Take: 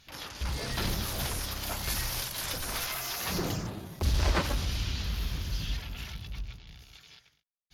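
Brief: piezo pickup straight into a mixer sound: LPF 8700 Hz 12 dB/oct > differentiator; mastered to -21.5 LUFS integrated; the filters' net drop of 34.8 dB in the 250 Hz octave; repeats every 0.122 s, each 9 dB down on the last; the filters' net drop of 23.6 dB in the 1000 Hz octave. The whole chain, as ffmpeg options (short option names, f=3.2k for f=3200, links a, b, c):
-af "lowpass=8.7k,aderivative,equalizer=f=250:t=o:g=-8,equalizer=f=1k:t=o:g=-9,aecho=1:1:122|244|366|488:0.355|0.124|0.0435|0.0152,volume=18.5dB"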